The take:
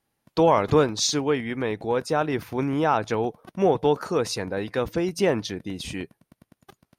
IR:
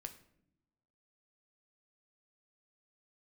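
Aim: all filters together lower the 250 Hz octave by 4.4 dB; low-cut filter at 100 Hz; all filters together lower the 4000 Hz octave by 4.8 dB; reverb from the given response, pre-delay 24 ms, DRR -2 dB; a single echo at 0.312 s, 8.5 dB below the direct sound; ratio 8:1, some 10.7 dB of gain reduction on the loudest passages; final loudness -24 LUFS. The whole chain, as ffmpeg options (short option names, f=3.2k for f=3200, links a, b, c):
-filter_complex "[0:a]highpass=100,equalizer=f=250:t=o:g=-6,equalizer=f=4k:t=o:g=-6,acompressor=threshold=-27dB:ratio=8,aecho=1:1:312:0.376,asplit=2[a][b];[1:a]atrim=start_sample=2205,adelay=24[c];[b][c]afir=irnorm=-1:irlink=0,volume=6.5dB[d];[a][d]amix=inputs=2:normalize=0,volume=4.5dB"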